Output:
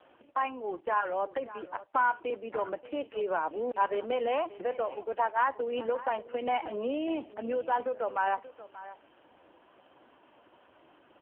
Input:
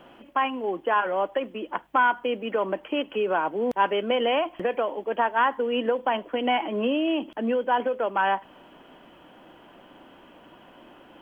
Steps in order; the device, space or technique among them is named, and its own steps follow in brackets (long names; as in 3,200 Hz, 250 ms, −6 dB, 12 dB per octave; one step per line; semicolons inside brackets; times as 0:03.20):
0:02.30–0:03.06: elliptic high-pass filter 180 Hz, stop band 80 dB
satellite phone (band-pass filter 320–3,000 Hz; single-tap delay 582 ms −16.5 dB; level −4.5 dB; AMR narrowband 5.15 kbit/s 8,000 Hz)